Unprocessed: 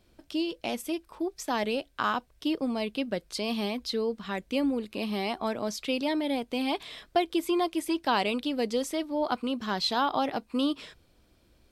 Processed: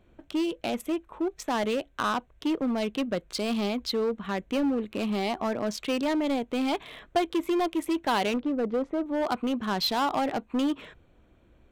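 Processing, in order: local Wiener filter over 9 samples; 8.36–9.06 s: Bessel low-pass 1 kHz, order 2; in parallel at -4.5 dB: wavefolder -28 dBFS

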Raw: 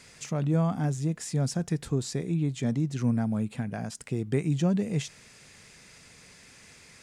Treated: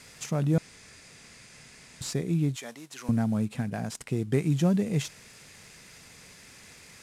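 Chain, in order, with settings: CVSD coder 64 kbps; 0.58–2.01 s: room tone; 2.56–3.09 s: high-pass 780 Hz 12 dB/octave; trim +1.5 dB

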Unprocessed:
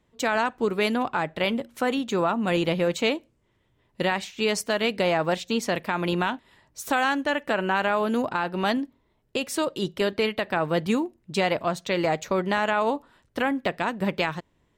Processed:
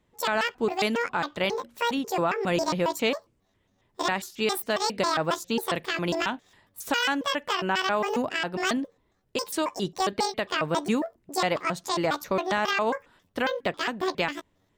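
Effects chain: pitch shift switched off and on +11 st, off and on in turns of 136 ms; trim -1.5 dB

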